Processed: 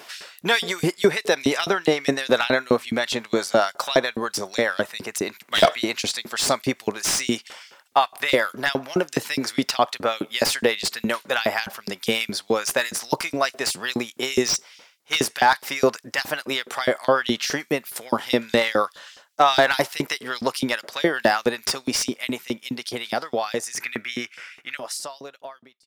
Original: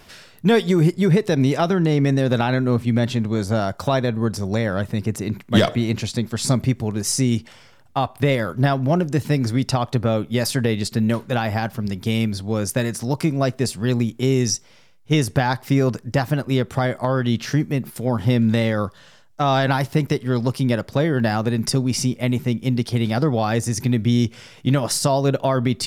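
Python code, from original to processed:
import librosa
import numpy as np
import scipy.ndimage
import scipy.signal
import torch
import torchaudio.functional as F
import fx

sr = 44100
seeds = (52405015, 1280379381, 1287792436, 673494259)

y = fx.fade_out_tail(x, sr, length_s=4.96)
y = fx.band_shelf(y, sr, hz=1800.0, db=12.0, octaves=1.3, at=(23.72, 24.77))
y = fx.filter_lfo_highpass(y, sr, shape='saw_up', hz=4.8, low_hz=300.0, high_hz=4400.0, q=0.94)
y = fx.slew_limit(y, sr, full_power_hz=300.0)
y = y * librosa.db_to_amplitude(6.0)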